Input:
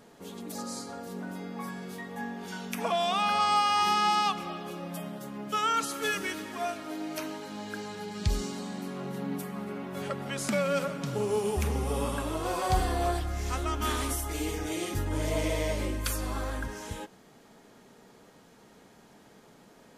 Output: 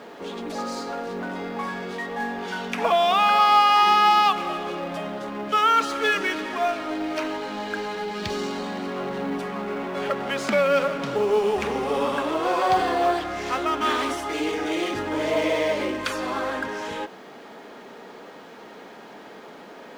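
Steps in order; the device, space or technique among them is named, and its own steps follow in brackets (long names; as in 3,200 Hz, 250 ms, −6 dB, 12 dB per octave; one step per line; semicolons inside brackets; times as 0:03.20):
phone line with mismatched companding (band-pass filter 310–3,500 Hz; mu-law and A-law mismatch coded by mu)
level +8 dB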